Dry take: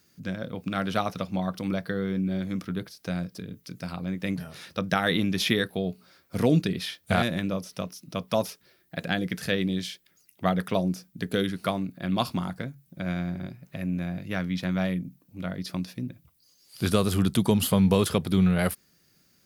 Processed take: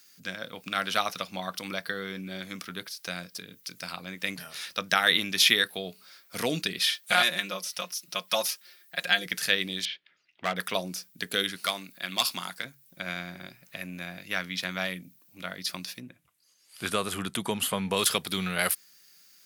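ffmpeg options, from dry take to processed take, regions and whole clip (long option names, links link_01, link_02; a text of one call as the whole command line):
ffmpeg -i in.wav -filter_complex "[0:a]asettb=1/sr,asplit=3[link_01][link_02][link_03];[link_01]atrim=end=6.794[link_04];[link_02]atrim=start=6.79:end=9.26,asetpts=PTS-STARTPTS,afade=type=in:duration=0.004:curve=qsin,afade=type=out:start_time=2.466:duration=0.004:curve=qsin,lowshelf=frequency=330:gain=-8.5,aecho=1:1:5.6:0.71,atrim=end_sample=108927[link_05];[link_03]atrim=start=9.256[link_06];[link_04][link_05]acrossfade=duration=0.004:curve1=hsin:curve2=qsin[link_07];[link_07][link_06]acrossfade=duration=0.004:curve1=qsin:curve2=hsin,asettb=1/sr,asplit=3[link_08][link_09][link_10];[link_08]atrim=end=9.854[link_11];[link_09]atrim=start=9.85:end=10.56,asetpts=PTS-STARTPTS,afade=type=in:duration=0.004:curve=qsin,afade=type=out:start_time=0.706:duration=0.004:curve=qsin,lowpass=frequency=3300:width=0.5412,lowpass=frequency=3300:width=1.3066,asoftclip=type=hard:threshold=-19.5dB[link_12];[link_10]atrim=start=10.556[link_13];[link_11][link_12]acrossfade=duration=0.004:curve1=hsin:curve2=qsin[link_14];[link_14][link_13]acrossfade=duration=0.004:curve1=qsin:curve2=hsin,asettb=1/sr,asplit=3[link_15][link_16][link_17];[link_15]atrim=end=11.664[link_18];[link_16]atrim=start=11.66:end=12.65,asetpts=PTS-STARTPTS,afade=type=in:duration=0.004:curve=qsin,afade=type=out:start_time=0.986:duration=0.004:curve=qsin,highpass=110,tiltshelf=frequency=1500:gain=-4,asoftclip=type=hard:threshold=-20dB[link_19];[link_17]atrim=start=12.646[link_20];[link_18][link_19]acrossfade=duration=0.004:curve1=hsin:curve2=qsin[link_21];[link_21][link_20]acrossfade=duration=0.004:curve1=qsin:curve2=hsin,asettb=1/sr,asplit=3[link_22][link_23][link_24];[link_22]atrim=end=16.004[link_25];[link_23]atrim=start=16:end=17.97,asetpts=PTS-STARTPTS,afade=type=in:duration=0.004:curve=qsin,afade=type=out:start_time=1.966:duration=0.004:curve=qsin,lowpass=8300,equalizer=frequency=4900:width_type=o:width=1.2:gain=-12.5[link_26];[link_24]atrim=start=17.966[link_27];[link_25][link_26]acrossfade=duration=0.004:curve1=hsin:curve2=qsin[link_28];[link_28][link_27]acrossfade=duration=0.004:curve1=qsin:curve2=hsin,highpass=frequency=250:poles=1,tiltshelf=frequency=930:gain=-8.5" out.wav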